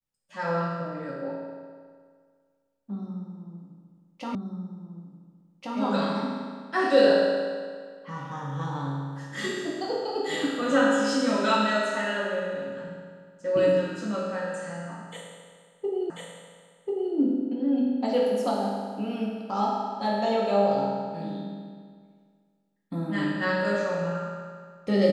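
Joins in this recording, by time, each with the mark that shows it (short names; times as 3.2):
4.35 repeat of the last 1.43 s
16.1 repeat of the last 1.04 s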